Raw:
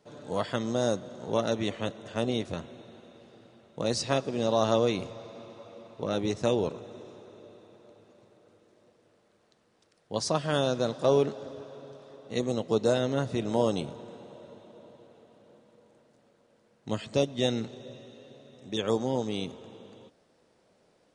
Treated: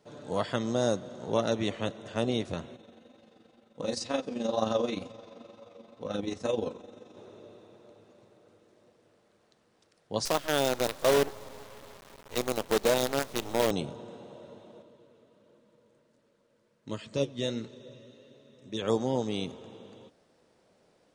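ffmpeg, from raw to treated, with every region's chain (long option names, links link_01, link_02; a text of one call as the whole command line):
ffmpeg -i in.wav -filter_complex "[0:a]asettb=1/sr,asplit=3[link_01][link_02][link_03];[link_01]atrim=end=2.764[link_04];[link_02]atrim=start=2.76:end=7.17,asetpts=PTS-STARTPTS,afade=type=in:duration=0.004:curve=qsin,afade=type=out:start_time=4.406:duration=0.004:curve=qsin,aecho=1:1:3.9:0.48,atrim=end_sample=194481,flanger=delay=18:depth=4.1:speed=2.1,tremolo=f=23:d=0.571[link_05];[link_03]atrim=start=7.166[link_06];[link_04][link_05]acrossfade=duration=0.004:curve1=hsin:curve2=qsin[link_07];[link_07][link_06]acrossfade=duration=0.004:curve1=qsin:curve2=hsin,asettb=1/sr,asplit=3[link_08][link_09][link_10];[link_08]atrim=end=10.254[link_11];[link_09]atrim=start=10.25:end=13.71,asetpts=PTS-STARTPTS,afade=type=in:duration=0.004:curve=qsin,afade=type=out:start_time=3.456:duration=0.004:curve=qsin,highpass=290,acrusher=bits=5:dc=4:mix=0:aa=0.000001[link_12];[link_10]atrim=start=13.706[link_13];[link_11][link_12]acrossfade=duration=0.004:curve1=hsin:curve2=qsin[link_14];[link_14][link_13]acrossfade=duration=0.004:curve1=qsin:curve2=hsin,asettb=1/sr,asplit=3[link_15][link_16][link_17];[link_15]atrim=end=14.824[link_18];[link_16]atrim=start=14.82:end=18.82,asetpts=PTS-STARTPTS,afade=type=in:duration=0.004:curve=qsin,afade=type=out:start_time=3.996:duration=0.004:curve=qsin,asuperstop=centerf=760:order=4:qfactor=4.7,flanger=delay=2.1:depth=7.1:regen=68:speed=1.4:shape=triangular[link_19];[link_17]atrim=start=18.816[link_20];[link_18][link_19]acrossfade=duration=0.004:curve1=hsin:curve2=qsin[link_21];[link_21][link_20]acrossfade=duration=0.004:curve1=qsin:curve2=hsin" out.wav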